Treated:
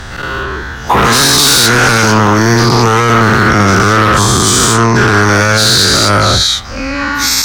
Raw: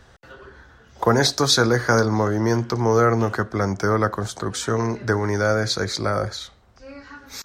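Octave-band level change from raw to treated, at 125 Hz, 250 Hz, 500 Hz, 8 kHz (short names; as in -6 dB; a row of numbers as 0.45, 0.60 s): +12.0, +11.5, +7.5, +19.0 dB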